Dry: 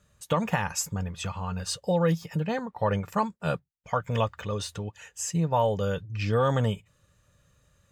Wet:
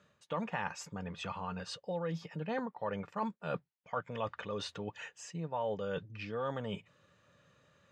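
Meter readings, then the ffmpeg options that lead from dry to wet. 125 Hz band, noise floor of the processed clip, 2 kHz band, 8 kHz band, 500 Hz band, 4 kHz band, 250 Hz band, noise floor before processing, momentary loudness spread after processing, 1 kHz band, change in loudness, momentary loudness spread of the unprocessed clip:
-15.5 dB, -75 dBFS, -7.5 dB, -17.0 dB, -10.0 dB, -8.5 dB, -10.5 dB, -69 dBFS, 6 LU, -9.5 dB, -10.5 dB, 9 LU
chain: -af "areverse,acompressor=threshold=-36dB:ratio=6,areverse,highpass=190,lowpass=3.7k,volume=3dB"

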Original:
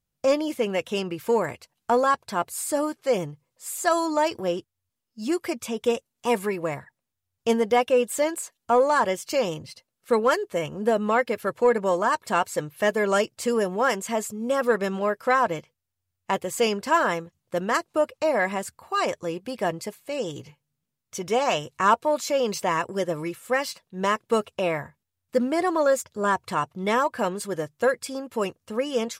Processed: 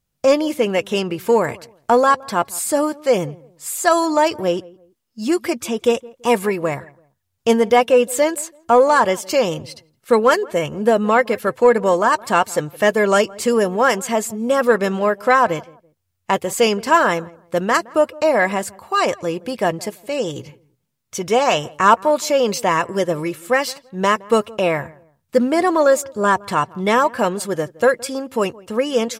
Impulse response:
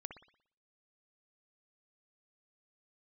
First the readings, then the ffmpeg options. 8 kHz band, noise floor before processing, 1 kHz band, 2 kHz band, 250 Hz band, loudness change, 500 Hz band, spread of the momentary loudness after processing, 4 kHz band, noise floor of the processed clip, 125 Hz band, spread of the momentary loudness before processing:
+7.0 dB, -83 dBFS, +7.0 dB, +7.0 dB, +7.0 dB, +7.0 dB, +7.0 dB, 10 LU, +7.0 dB, -71 dBFS, +7.0 dB, 10 LU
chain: -filter_complex "[0:a]asplit=2[a][b];[b]adelay=167,lowpass=f=1.1k:p=1,volume=-21.5dB,asplit=2[c][d];[d]adelay=167,lowpass=f=1.1k:p=1,volume=0.3[e];[a][c][e]amix=inputs=3:normalize=0,volume=7dB"

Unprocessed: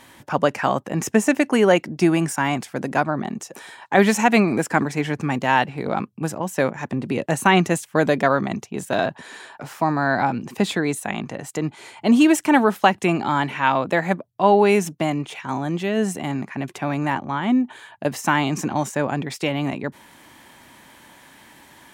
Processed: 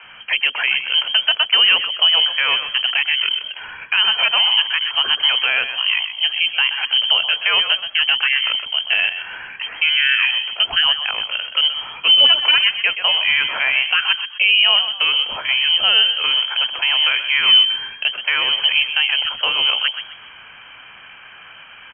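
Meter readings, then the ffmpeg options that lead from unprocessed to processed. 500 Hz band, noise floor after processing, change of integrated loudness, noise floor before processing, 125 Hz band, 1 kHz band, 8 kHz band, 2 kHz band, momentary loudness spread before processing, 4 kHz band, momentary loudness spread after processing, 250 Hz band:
-15.5 dB, -41 dBFS, +6.5 dB, -51 dBFS, under -25 dB, -7.0 dB, under -40 dB, +8.0 dB, 12 LU, +23.0 dB, 8 LU, under -30 dB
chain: -filter_complex "[0:a]alimiter=limit=-13dB:level=0:latency=1:release=277,asplit=2[a][b];[b]asplit=4[c][d][e][f];[c]adelay=126,afreqshift=-52,volume=-10dB[g];[d]adelay=252,afreqshift=-104,volume=-19.6dB[h];[e]adelay=378,afreqshift=-156,volume=-29.3dB[i];[f]adelay=504,afreqshift=-208,volume=-38.9dB[j];[g][h][i][j]amix=inputs=4:normalize=0[k];[a][k]amix=inputs=2:normalize=0,lowpass=f=2.8k:t=q:w=0.5098,lowpass=f=2.8k:t=q:w=0.6013,lowpass=f=2.8k:t=q:w=0.9,lowpass=f=2.8k:t=q:w=2.563,afreqshift=-3300,acrossover=split=320[l][m];[l]adelay=30[n];[n][m]amix=inputs=2:normalize=0,volume=8dB"

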